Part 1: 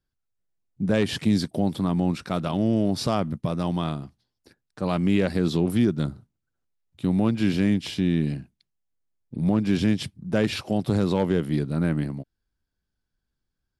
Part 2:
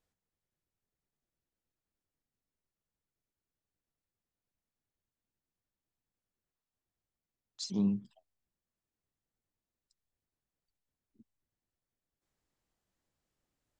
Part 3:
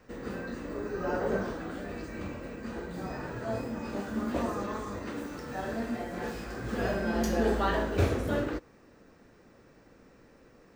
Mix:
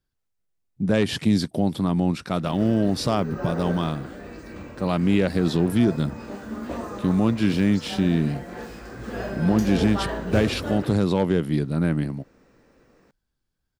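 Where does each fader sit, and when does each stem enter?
+1.5, −6.5, −0.5 decibels; 0.00, 0.15, 2.35 seconds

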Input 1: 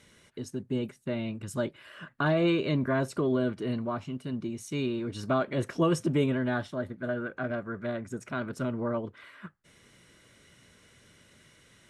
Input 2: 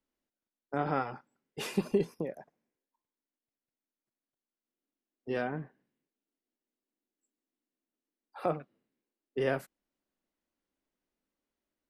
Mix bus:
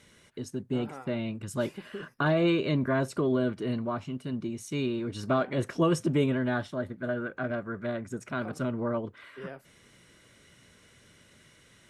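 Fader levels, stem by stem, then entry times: +0.5, −12.5 decibels; 0.00, 0.00 seconds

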